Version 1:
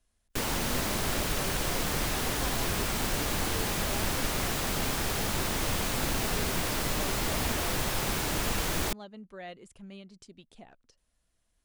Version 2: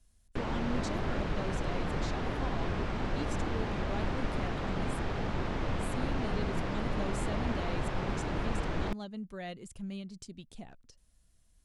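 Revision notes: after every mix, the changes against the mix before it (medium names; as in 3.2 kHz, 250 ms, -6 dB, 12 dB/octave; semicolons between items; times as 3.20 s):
speech: add tone controls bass +10 dB, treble +6 dB; background: add tape spacing loss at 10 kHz 36 dB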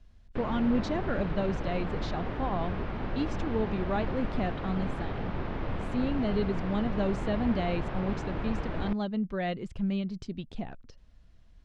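speech +10.5 dB; master: add distance through air 230 m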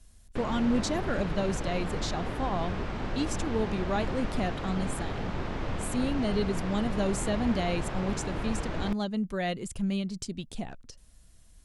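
master: remove distance through air 230 m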